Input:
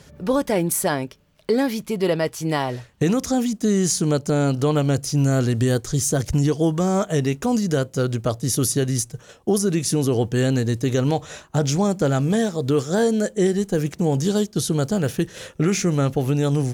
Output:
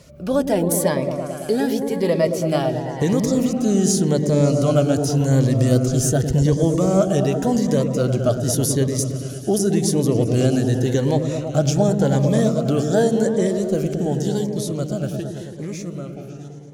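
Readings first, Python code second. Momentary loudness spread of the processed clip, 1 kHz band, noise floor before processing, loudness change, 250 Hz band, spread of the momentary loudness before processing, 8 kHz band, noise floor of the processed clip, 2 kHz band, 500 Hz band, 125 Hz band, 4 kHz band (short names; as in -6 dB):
8 LU, -0.5 dB, -50 dBFS, +2.0 dB, +2.0 dB, 4 LU, -0.5 dB, -33 dBFS, -3.0 dB, +2.5 dB, +2.0 dB, -1.0 dB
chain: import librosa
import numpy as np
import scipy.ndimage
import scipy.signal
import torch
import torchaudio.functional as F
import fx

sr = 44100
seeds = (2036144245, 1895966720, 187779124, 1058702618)

y = fx.fade_out_tail(x, sr, length_s=3.73)
y = fx.peak_eq(y, sr, hz=610.0, db=8.5, octaves=0.34)
y = fx.echo_opening(y, sr, ms=110, hz=400, octaves=1, feedback_pct=70, wet_db=-3)
y = fx.notch_cascade(y, sr, direction='rising', hz=0.88)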